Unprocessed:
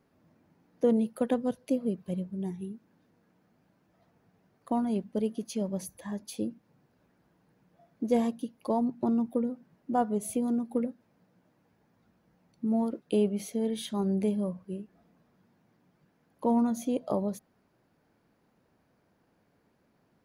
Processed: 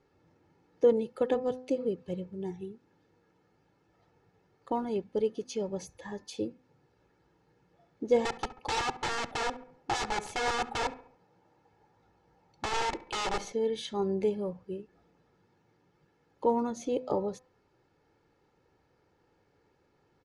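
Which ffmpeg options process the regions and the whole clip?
ffmpeg -i in.wav -filter_complex "[0:a]asettb=1/sr,asplit=3[link_01][link_02][link_03];[link_01]atrim=end=8.254[link_04];[link_02]atrim=start=8.25:end=13.53,asetpts=PTS-STARTPTS,afade=type=in:duration=0.004:curve=qsin,afade=type=out:start_time=5.276:duration=0.004:curve=qsin,aeval=exprs='(mod(28.2*val(0)+1,2)-1)/28.2':channel_layout=same,equalizer=frequency=810:width_type=o:width=0.73:gain=7,asplit=2[link_05][link_06];[link_06]adelay=69,lowpass=frequency=1800:poles=1,volume=-15.5dB,asplit=2[link_07][link_08];[link_08]adelay=69,lowpass=frequency=1800:poles=1,volume=0.49,asplit=2[link_09][link_10];[link_10]adelay=69,lowpass=frequency=1800:poles=1,volume=0.49,asplit=2[link_11][link_12];[link_12]adelay=69,lowpass=frequency=1800:poles=1,volume=0.49[link_13];[link_05][link_07][link_09][link_11][link_13]amix=inputs=5:normalize=0,atrim=end_sample=232848[link_14];[link_03]atrim=start=13.526[link_15];[link_04][link_14]acrossfade=duration=0.004:curve1=hsin:curve2=qsin[link_16];[link_16][link_15]acrossfade=duration=0.004:curve1=qsin:curve2=hsin,lowpass=frequency=7200:width=0.5412,lowpass=frequency=7200:width=1.3066,aecho=1:1:2.3:0.61,bandreject=frequency=254.1:width_type=h:width=4,bandreject=frequency=508.2:width_type=h:width=4,bandreject=frequency=762.3:width_type=h:width=4,bandreject=frequency=1016.4:width_type=h:width=4,bandreject=frequency=1270.5:width_type=h:width=4,bandreject=frequency=1524.6:width_type=h:width=4,bandreject=frequency=1778.7:width_type=h:width=4,bandreject=frequency=2032.8:width_type=h:width=4,bandreject=frequency=2286.9:width_type=h:width=4,bandreject=frequency=2541:width_type=h:width=4" out.wav

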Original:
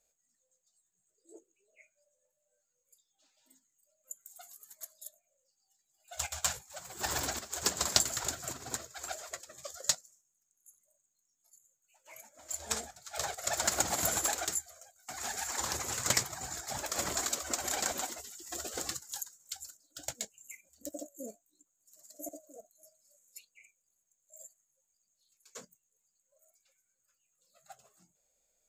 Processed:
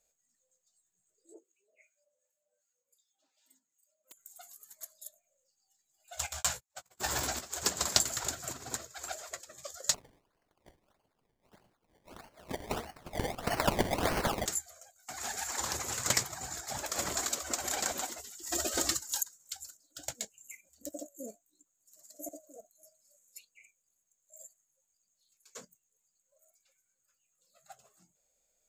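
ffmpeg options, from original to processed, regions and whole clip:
ffmpeg -i in.wav -filter_complex "[0:a]asettb=1/sr,asplit=3[link_01][link_02][link_03];[link_01]atrim=end=1.344[link_04];[link_02]atrim=start=1.34:end=4.17,asetpts=PTS-STARTPTS,afade=type=in:duration=0.004:curve=qsin,afade=type=out:start_time=2.826:duration=0.004:curve=qsin,highpass=210,aeval=exprs='(mod(89.1*val(0)+1,2)-1)/89.1':channel_layout=same,acrossover=split=1200[link_05][link_06];[link_05]aeval=exprs='val(0)*(1-0.7/2+0.7/2*cos(2*PI*2.6*n/s))':channel_layout=same[link_07];[link_06]aeval=exprs='val(0)*(1-0.7/2-0.7/2*cos(2*PI*2.6*n/s))':channel_layout=same[link_08];[link_07][link_08]amix=inputs=2:normalize=0[link_09];[link_03]atrim=start=4.166[link_10];[link_04][link_09]acrossfade=duration=0.004:curve1=hsin:curve2=qsin[link_11];[link_11][link_10]acrossfade=duration=0.004:curve1=qsin:curve2=hsin,asettb=1/sr,asplit=3[link_12][link_13][link_14];[link_12]atrim=end=6.334[link_15];[link_13]atrim=start=6.33:end=7.46,asetpts=PTS-STARTPTS,afade=type=in:duration=0.004:curve=qsin,afade=type=out:start_time=1.126:duration=0.004:curve=qsin,agate=range=-34dB:threshold=-45dB:ratio=16:release=100:detection=peak,asplit=2[link_16][link_17];[link_17]adelay=16,volume=-7dB[link_18];[link_16][link_18]amix=inputs=2:normalize=0,atrim=end_sample=49833[link_19];[link_14]atrim=start=7.456[link_20];[link_15][link_19]acrossfade=duration=0.004:curve1=hsin:curve2=qsin[link_21];[link_21][link_20]acrossfade=duration=0.004:curve1=qsin:curve2=hsin,asettb=1/sr,asplit=3[link_22][link_23][link_24];[link_22]atrim=end=9.944[link_25];[link_23]atrim=start=9.94:end=14.46,asetpts=PTS-STARTPTS,afade=type=in:duration=0.004:curve=qsin,afade=type=out:start_time=4.516:duration=0.004:curve=qsin,aphaser=in_gain=1:out_gain=1:delay=4:decay=0.43:speed=1.3:type=triangular,acrusher=samples=23:mix=1:aa=0.000001:lfo=1:lforange=23:lforate=1.6[link_26];[link_24]atrim=start=14.456[link_27];[link_25][link_26]acrossfade=duration=0.004:curve1=hsin:curve2=qsin[link_28];[link_28][link_27]acrossfade=duration=0.004:curve1=qsin:curve2=hsin,asettb=1/sr,asplit=3[link_29][link_30][link_31];[link_29]atrim=end=18.434[link_32];[link_30]atrim=start=18.43:end=19.23,asetpts=PTS-STARTPTS,afade=type=in:duration=0.004:curve=qsin,afade=type=out:start_time=0.796:duration=0.004:curve=qsin,aecho=1:1:3.2:0.59,atrim=end_sample=35280,acontrast=44[link_33];[link_31]atrim=start=19.226[link_34];[link_32][link_33]acrossfade=duration=0.004:curve1=hsin:curve2=qsin[link_35];[link_35][link_34]acrossfade=duration=0.004:curve1=qsin:curve2=hsin" out.wav

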